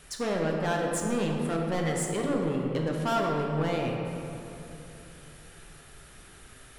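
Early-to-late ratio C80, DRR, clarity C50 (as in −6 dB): 2.5 dB, 0.0 dB, 1.5 dB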